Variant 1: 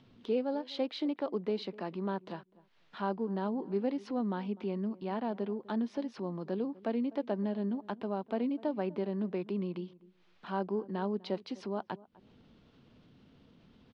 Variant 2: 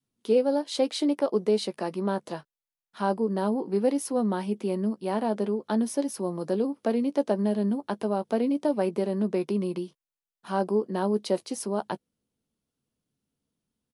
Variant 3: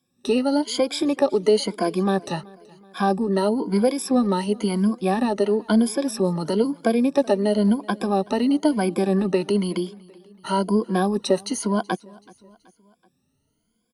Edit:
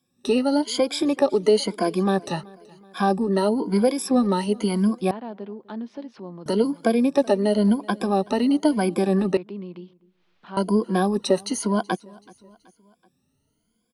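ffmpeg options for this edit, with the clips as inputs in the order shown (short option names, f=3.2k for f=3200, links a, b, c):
-filter_complex "[0:a]asplit=2[a][b];[2:a]asplit=3[c][d][e];[c]atrim=end=5.112[f];[a]atrim=start=5.108:end=6.462[g];[d]atrim=start=6.458:end=9.372[h];[b]atrim=start=9.368:end=10.572[i];[e]atrim=start=10.568[j];[f][g]acrossfade=d=0.004:c1=hsin:c2=hsin[k];[k][h]acrossfade=d=0.004:c1=hsin:c2=hsin[l];[l][i]acrossfade=d=0.004:c1=hsin:c2=hsin[m];[m][j]acrossfade=d=0.004:c1=hsin:c2=hsin"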